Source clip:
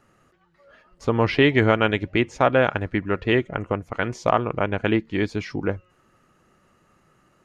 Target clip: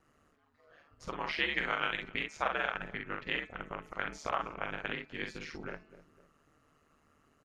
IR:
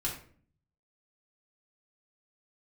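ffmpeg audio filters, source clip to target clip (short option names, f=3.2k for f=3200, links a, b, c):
-filter_complex "[0:a]aecho=1:1:254|508:0.0668|0.0234,acrossover=split=890[a][b];[a]acompressor=threshold=-33dB:ratio=10[c];[c][b]amix=inputs=2:normalize=0,asplit=2[d][e];[e]adelay=49,volume=-4dB[f];[d][f]amix=inputs=2:normalize=0,aeval=exprs='val(0)*sin(2*PI*75*n/s)':c=same,bandreject=f=215.9:t=h:w=4,bandreject=f=431.8:t=h:w=4,bandreject=f=647.7:t=h:w=4,bandreject=f=863.6:t=h:w=4,bandreject=f=1.0795k:t=h:w=4,bandreject=f=1.2954k:t=h:w=4,bandreject=f=1.5113k:t=h:w=4,bandreject=f=1.7272k:t=h:w=4,bandreject=f=1.9431k:t=h:w=4,bandreject=f=2.159k:t=h:w=4,bandreject=f=2.3749k:t=h:w=4,bandreject=f=2.5908k:t=h:w=4,volume=-6.5dB"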